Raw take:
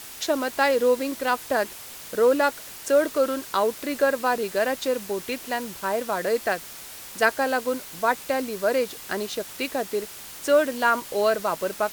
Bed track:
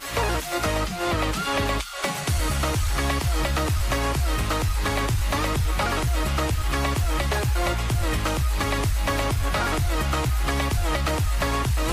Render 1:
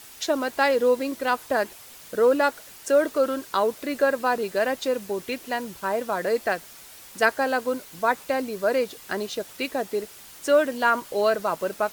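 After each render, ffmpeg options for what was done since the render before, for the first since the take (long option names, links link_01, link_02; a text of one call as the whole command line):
ffmpeg -i in.wav -af "afftdn=noise_reduction=6:noise_floor=-41" out.wav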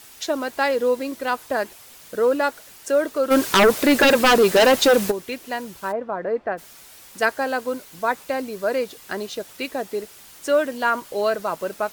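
ffmpeg -i in.wav -filter_complex "[0:a]asplit=3[link_01][link_02][link_03];[link_01]afade=type=out:start_time=3.3:duration=0.02[link_04];[link_02]aeval=exprs='0.316*sin(PI/2*3.55*val(0)/0.316)':channel_layout=same,afade=type=in:start_time=3.3:duration=0.02,afade=type=out:start_time=5.1:duration=0.02[link_05];[link_03]afade=type=in:start_time=5.1:duration=0.02[link_06];[link_04][link_05][link_06]amix=inputs=3:normalize=0,asplit=3[link_07][link_08][link_09];[link_07]afade=type=out:start_time=5.91:duration=0.02[link_10];[link_08]lowpass=1400,afade=type=in:start_time=5.91:duration=0.02,afade=type=out:start_time=6.57:duration=0.02[link_11];[link_09]afade=type=in:start_time=6.57:duration=0.02[link_12];[link_10][link_11][link_12]amix=inputs=3:normalize=0" out.wav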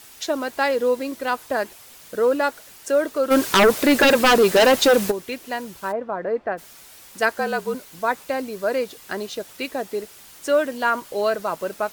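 ffmpeg -i in.wav -filter_complex "[0:a]asettb=1/sr,asplit=3[link_01][link_02][link_03];[link_01]atrim=end=7.334[link_04];[link_02]atrim=start=7.33:end=7.75,asetpts=PTS-STARTPTS,afade=type=in:duration=0.004:curve=qsin,afade=type=out:start_time=0.416:duration=0.004:curve=qsin,afreqshift=-46[link_05];[link_03]atrim=start=7.746[link_06];[link_04][link_05]acrossfade=duration=0.004:curve1=hsin:curve2=qsin[link_07];[link_07][link_06]acrossfade=duration=0.004:curve1=qsin:curve2=hsin" out.wav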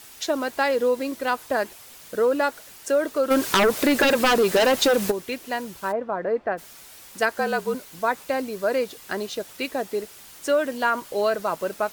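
ffmpeg -i in.wav -af "acompressor=threshold=-16dB:ratio=6" out.wav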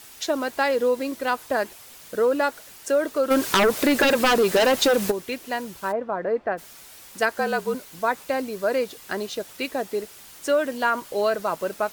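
ffmpeg -i in.wav -af anull out.wav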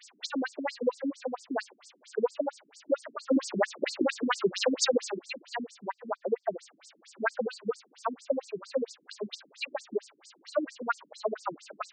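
ffmpeg -i in.wav -af "afftfilt=real='re*between(b*sr/1024,230*pow(6400/230,0.5+0.5*sin(2*PI*4.4*pts/sr))/1.41,230*pow(6400/230,0.5+0.5*sin(2*PI*4.4*pts/sr))*1.41)':imag='im*between(b*sr/1024,230*pow(6400/230,0.5+0.5*sin(2*PI*4.4*pts/sr))/1.41,230*pow(6400/230,0.5+0.5*sin(2*PI*4.4*pts/sr))*1.41)':win_size=1024:overlap=0.75" out.wav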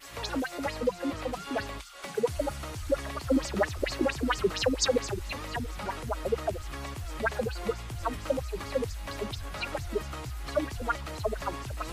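ffmpeg -i in.wav -i bed.wav -filter_complex "[1:a]volume=-14.5dB[link_01];[0:a][link_01]amix=inputs=2:normalize=0" out.wav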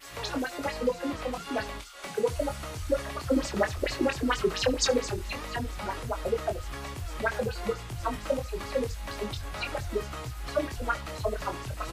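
ffmpeg -i in.wav -filter_complex "[0:a]asplit=2[link_01][link_02];[link_02]adelay=24,volume=-6.5dB[link_03];[link_01][link_03]amix=inputs=2:normalize=0,aecho=1:1:71:0.075" out.wav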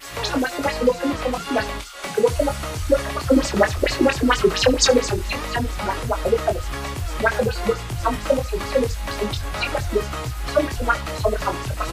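ffmpeg -i in.wav -af "volume=9.5dB" out.wav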